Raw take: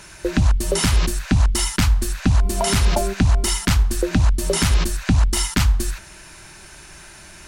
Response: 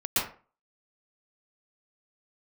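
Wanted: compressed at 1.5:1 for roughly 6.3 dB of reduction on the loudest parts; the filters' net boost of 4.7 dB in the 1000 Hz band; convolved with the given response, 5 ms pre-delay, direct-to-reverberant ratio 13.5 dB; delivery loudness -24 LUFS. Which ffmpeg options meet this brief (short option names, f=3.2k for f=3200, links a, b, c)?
-filter_complex "[0:a]equalizer=f=1k:t=o:g=6,acompressor=threshold=-29dB:ratio=1.5,asplit=2[a][b];[1:a]atrim=start_sample=2205,adelay=5[c];[b][c]afir=irnorm=-1:irlink=0,volume=-24dB[d];[a][d]amix=inputs=2:normalize=0,volume=0.5dB"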